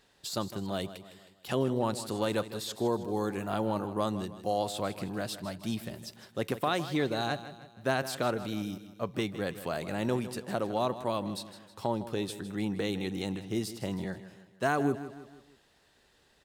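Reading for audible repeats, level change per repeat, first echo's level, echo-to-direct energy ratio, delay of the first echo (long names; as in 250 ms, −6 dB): 4, −6.5 dB, −13.5 dB, −12.5 dB, 158 ms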